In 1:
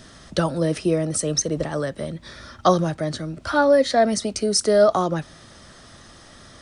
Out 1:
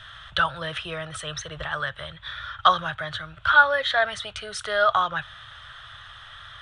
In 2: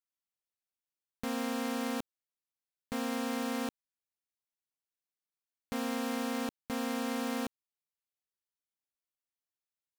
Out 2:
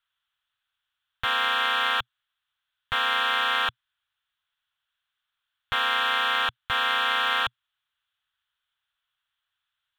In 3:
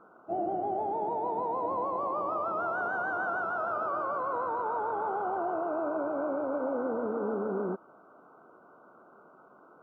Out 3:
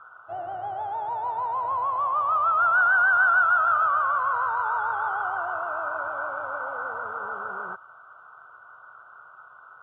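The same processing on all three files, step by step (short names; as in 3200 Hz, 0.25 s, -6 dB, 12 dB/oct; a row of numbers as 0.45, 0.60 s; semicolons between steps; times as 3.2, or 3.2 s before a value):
EQ curve 120 Hz 0 dB, 240 Hz -29 dB, 1500 Hz +12 dB, 2200 Hz +2 dB, 3400 Hz +13 dB, 4800 Hz -13 dB; match loudness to -24 LUFS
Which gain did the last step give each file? -1.0, +11.0, +3.5 dB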